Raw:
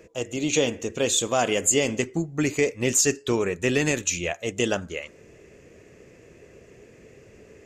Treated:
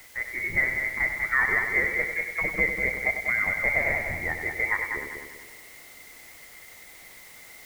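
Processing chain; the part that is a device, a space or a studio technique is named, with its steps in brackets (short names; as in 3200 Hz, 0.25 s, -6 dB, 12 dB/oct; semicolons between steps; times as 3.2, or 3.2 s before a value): scrambled radio voice (BPF 370–3000 Hz; inverted band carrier 2500 Hz; white noise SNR 21 dB); multi-head echo 97 ms, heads first and second, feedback 50%, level -8 dB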